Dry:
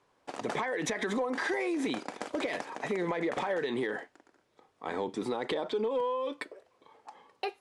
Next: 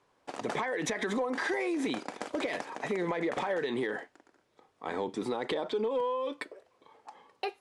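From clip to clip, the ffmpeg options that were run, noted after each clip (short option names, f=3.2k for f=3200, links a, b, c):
-af anull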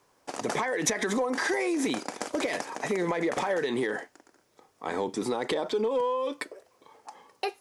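-af "aexciter=amount=2.5:drive=5.5:freq=5k,volume=3.5dB"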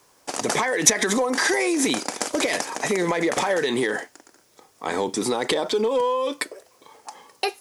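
-af "highshelf=f=3.4k:g=9,volume=5dB"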